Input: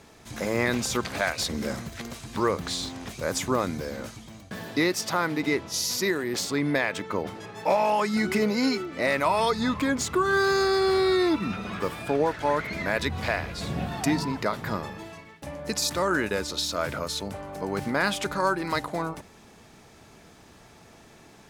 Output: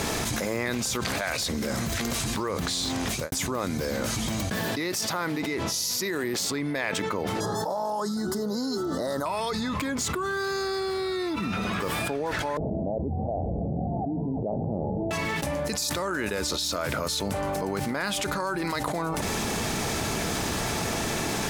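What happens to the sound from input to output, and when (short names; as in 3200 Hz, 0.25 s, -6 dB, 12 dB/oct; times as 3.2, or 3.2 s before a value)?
2.78–3.32 fade out quadratic
7.4–9.26 Butterworth band-stop 2400 Hz, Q 0.92
12.57–15.11 Chebyshev low-pass 800 Hz, order 6
whole clip: high shelf 5200 Hz +5.5 dB; fast leveller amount 100%; gain -9 dB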